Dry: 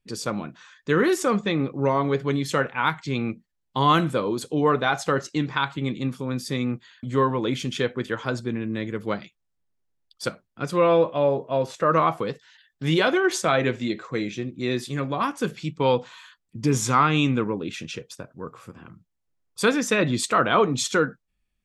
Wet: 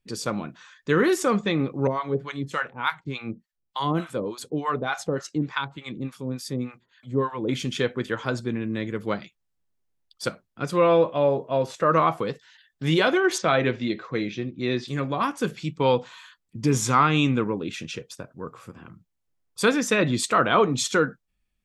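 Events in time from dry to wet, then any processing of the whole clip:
1.87–7.49 harmonic tremolo 3.4 Hz, depth 100%, crossover 730 Hz
13.38–14.88 LPF 5400 Hz 24 dB/oct

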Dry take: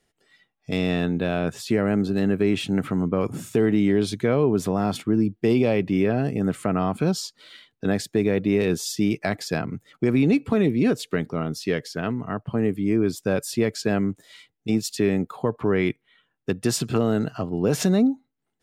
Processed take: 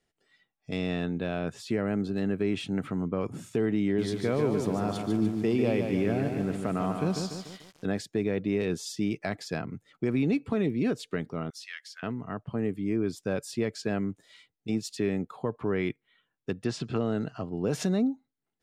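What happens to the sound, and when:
3.84–7.99 lo-fi delay 0.146 s, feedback 55%, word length 7-bit, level -5 dB
11.5–12.03 HPF 1500 Hz 24 dB/oct
16.63–17.41 LPF 4100 Hz -> 9800 Hz
whole clip: Bessel low-pass 8900 Hz, order 2; gain -7 dB

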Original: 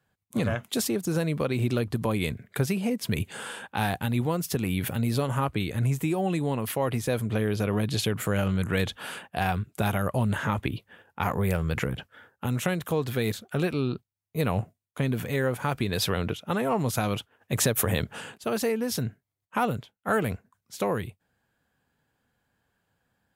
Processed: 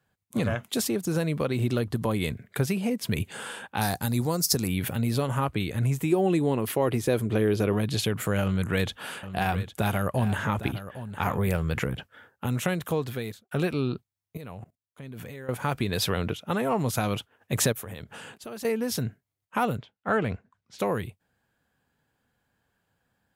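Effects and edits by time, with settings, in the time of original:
1.46–2.27 notch 2400 Hz
3.81–4.68 resonant high shelf 3900 Hz +8 dB, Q 3
6.12–7.73 bell 360 Hz +7.5 dB 0.71 oct
8.42–11.93 echo 0.808 s -12.5 dB
12.92–13.51 fade out
14.37–15.49 level quantiser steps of 20 dB
17.72–18.65 compressor 3:1, threshold -39 dBFS
19.77–20.79 LPF 4400 Hz

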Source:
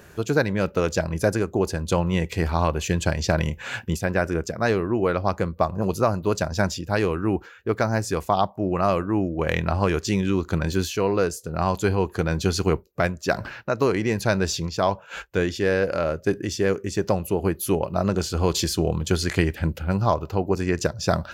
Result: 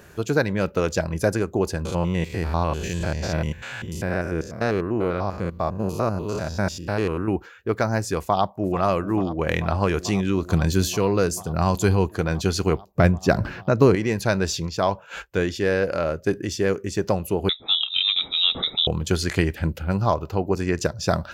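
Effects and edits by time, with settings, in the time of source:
1.85–7.28 stepped spectrum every 0.1 s
8.19–8.78 echo throw 0.44 s, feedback 85%, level -13 dB
10.49–12.09 tone controls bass +5 dB, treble +6 dB
12.87–13.95 low shelf 360 Hz +11.5 dB
17.49–18.87 inverted band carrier 3800 Hz

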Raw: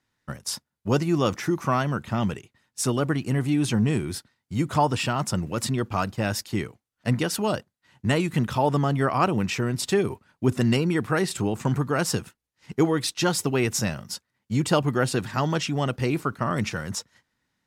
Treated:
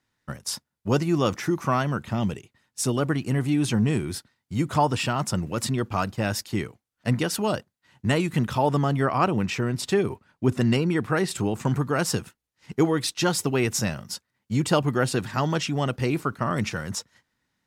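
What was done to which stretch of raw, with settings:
2.11–2.95 dynamic EQ 1400 Hz, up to -6 dB, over -44 dBFS, Q 1.1
9.01–11.29 high shelf 5700 Hz -5 dB

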